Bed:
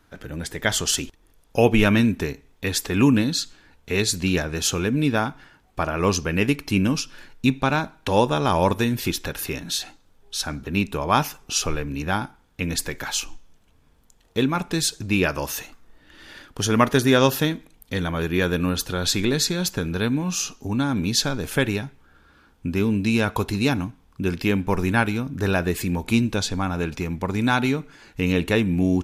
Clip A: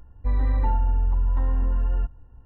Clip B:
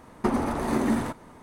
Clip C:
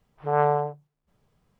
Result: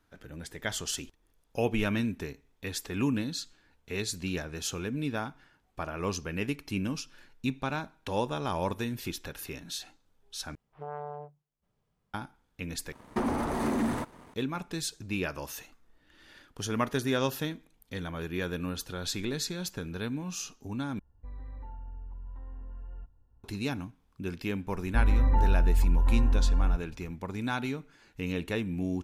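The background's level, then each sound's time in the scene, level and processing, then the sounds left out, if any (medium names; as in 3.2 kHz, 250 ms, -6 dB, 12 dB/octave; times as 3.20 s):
bed -11.5 dB
10.55 s: replace with C -10 dB + compression 3:1, threshold -25 dBFS
12.92 s: replace with B -9 dB + waveshaping leveller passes 2
20.99 s: replace with A -15.5 dB + compression, threshold -23 dBFS
24.70 s: add A -1.5 dB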